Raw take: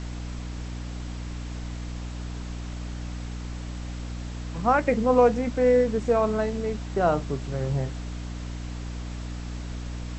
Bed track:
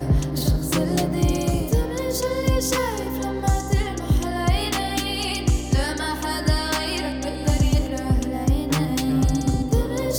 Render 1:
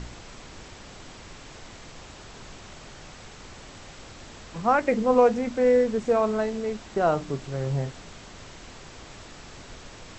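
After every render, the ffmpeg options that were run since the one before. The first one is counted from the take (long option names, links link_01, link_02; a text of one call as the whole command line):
ffmpeg -i in.wav -af "bandreject=frequency=60:width_type=h:width=4,bandreject=frequency=120:width_type=h:width=4,bandreject=frequency=180:width_type=h:width=4,bandreject=frequency=240:width_type=h:width=4,bandreject=frequency=300:width_type=h:width=4" out.wav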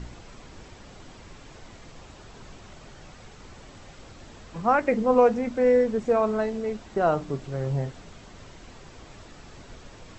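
ffmpeg -i in.wav -af "afftdn=noise_reduction=6:noise_floor=-45" out.wav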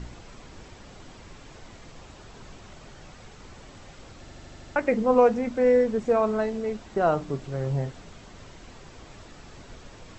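ffmpeg -i in.wav -filter_complex "[0:a]asplit=8[link_01][link_02][link_03][link_04][link_05][link_06][link_07][link_08];[link_01]atrim=end=4.282[link_09];[link_02]atrim=start=4.198:end=4.282[link_10];[link_03]atrim=start=4.198:end=4.282[link_11];[link_04]atrim=start=4.198:end=4.282[link_12];[link_05]atrim=start=4.198:end=4.282[link_13];[link_06]atrim=start=4.198:end=4.282[link_14];[link_07]atrim=start=4.198:end=4.282[link_15];[link_08]atrim=start=4.758[link_16];[link_09][link_10]acrossfade=duration=0.004:curve1=hsin:curve2=hsin[link_17];[link_17][link_11]acrossfade=duration=0.004:curve1=hsin:curve2=hsin[link_18];[link_18][link_12]acrossfade=duration=0.004:curve1=hsin:curve2=hsin[link_19];[link_19][link_13]acrossfade=duration=0.004:curve1=hsin:curve2=hsin[link_20];[link_20][link_14]acrossfade=duration=0.004:curve1=hsin:curve2=hsin[link_21];[link_21][link_15]acrossfade=duration=0.004:curve1=hsin:curve2=hsin[link_22];[link_22][link_16]acrossfade=duration=0.004:curve1=hsin:curve2=hsin" out.wav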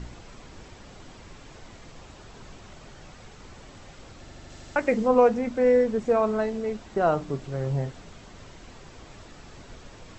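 ffmpeg -i in.wav -filter_complex "[0:a]asettb=1/sr,asplit=3[link_01][link_02][link_03];[link_01]atrim=end=4.504[link_04];[link_02]atrim=start=4.5:end=5.08,asetpts=PTS-STARTPTS,afade=type=in:duration=0.004:curve=qsin,afade=type=out:start_time=0.576:duration=0.004:curve=qsin,highshelf=frequency=4400:gain=6.5[link_05];[link_03]atrim=start=5.076[link_06];[link_04][link_05]acrossfade=duration=0.004:curve1=hsin:curve2=qsin[link_07];[link_07][link_06]acrossfade=duration=0.004:curve1=qsin:curve2=hsin" out.wav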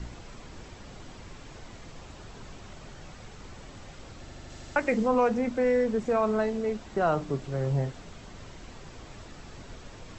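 ffmpeg -i in.wav -filter_complex "[0:a]acrossover=split=220|840|1800[link_01][link_02][link_03][link_04];[link_01]acompressor=mode=upward:threshold=-41dB:ratio=2.5[link_05];[link_02]alimiter=limit=-22dB:level=0:latency=1[link_06];[link_05][link_06][link_03][link_04]amix=inputs=4:normalize=0" out.wav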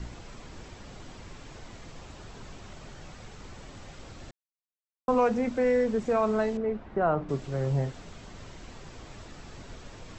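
ffmpeg -i in.wav -filter_complex "[0:a]asettb=1/sr,asplit=3[link_01][link_02][link_03];[link_01]atrim=end=6.574[link_04];[link_02]atrim=start=6.57:end=7.29,asetpts=PTS-STARTPTS,afade=type=in:duration=0.004:curve=qsin,afade=type=out:start_time=0.716:duration=0.004:curve=qsin,lowpass=1800[link_05];[link_03]atrim=start=7.286[link_06];[link_04][link_05]acrossfade=duration=0.004:curve1=hsin:curve2=qsin[link_07];[link_07][link_06]acrossfade=duration=0.004:curve1=qsin:curve2=hsin,asplit=3[link_08][link_09][link_10];[link_08]atrim=end=4.31,asetpts=PTS-STARTPTS,afade=type=out:start_time=4.306:duration=0.004:curve=hsin[link_11];[link_09]atrim=start=4.31:end=5.08,asetpts=PTS-STARTPTS,volume=0[link_12];[link_10]atrim=start=5.08,asetpts=PTS-STARTPTS,afade=type=in:duration=0.004:curve=hsin[link_13];[link_11][link_12][link_13]concat=n=3:v=0:a=1" out.wav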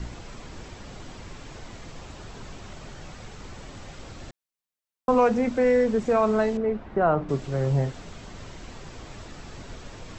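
ffmpeg -i in.wav -af "volume=4dB" out.wav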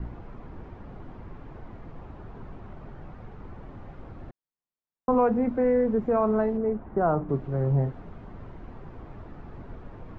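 ffmpeg -i in.wav -af "lowpass=1100,equalizer=frequency=560:width_type=o:width=0.56:gain=-3.5" out.wav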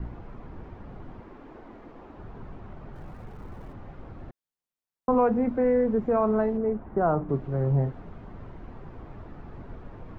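ffmpeg -i in.wav -filter_complex "[0:a]asettb=1/sr,asplit=3[link_01][link_02][link_03];[link_01]atrim=end=1.204[link_04];[link_02]atrim=start=1.2:end=2.17,asetpts=PTS-STARTPTS,afade=type=in:duration=0.004:curve=qsin,afade=type=out:start_time=0.966:duration=0.004:curve=qsin,lowshelf=frequency=190:width_type=q:width=1.5:gain=-10[link_05];[link_03]atrim=start=2.166[link_06];[link_04][link_05]acrossfade=duration=0.004:curve1=hsin:curve2=qsin[link_07];[link_07][link_06]acrossfade=duration=0.004:curve1=qsin:curve2=hsin,asettb=1/sr,asplit=3[link_08][link_09][link_10];[link_08]atrim=end=2.944[link_11];[link_09]atrim=start=2.94:end=3.73,asetpts=PTS-STARTPTS,afade=type=in:duration=0.004:curve=qsin,afade=type=out:start_time=0.786:duration=0.004:curve=qsin,aeval=exprs='val(0)+0.5*0.00178*sgn(val(0))':channel_layout=same[link_12];[link_10]atrim=start=3.726[link_13];[link_11][link_12]acrossfade=duration=0.004:curve1=hsin:curve2=qsin[link_14];[link_14][link_13]acrossfade=duration=0.004:curve1=qsin:curve2=hsin" out.wav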